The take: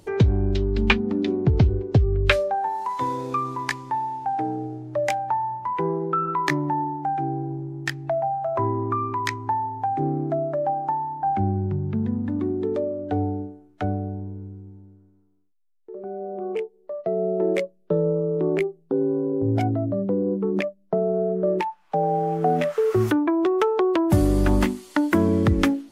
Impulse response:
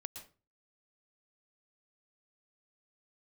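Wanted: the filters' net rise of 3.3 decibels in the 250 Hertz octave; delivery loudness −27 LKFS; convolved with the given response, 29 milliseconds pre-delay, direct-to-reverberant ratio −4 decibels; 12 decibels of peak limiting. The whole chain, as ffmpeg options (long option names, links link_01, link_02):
-filter_complex "[0:a]equalizer=frequency=250:width_type=o:gain=4.5,alimiter=limit=-15dB:level=0:latency=1,asplit=2[link_01][link_02];[1:a]atrim=start_sample=2205,adelay=29[link_03];[link_02][link_03]afir=irnorm=-1:irlink=0,volume=7.5dB[link_04];[link_01][link_04]amix=inputs=2:normalize=0,volume=-7.5dB"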